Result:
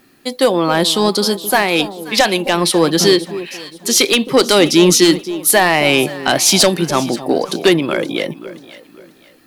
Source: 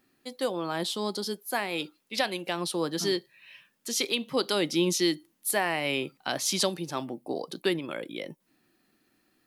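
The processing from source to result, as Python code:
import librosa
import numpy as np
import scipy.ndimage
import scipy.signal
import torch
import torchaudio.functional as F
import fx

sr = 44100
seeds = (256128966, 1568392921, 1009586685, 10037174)

y = fx.fold_sine(x, sr, drive_db=7, ceiling_db=-10.5)
y = fx.echo_alternate(y, sr, ms=265, hz=940.0, feedback_pct=56, wet_db=-12.0)
y = F.gain(torch.from_numpy(y), 6.5).numpy()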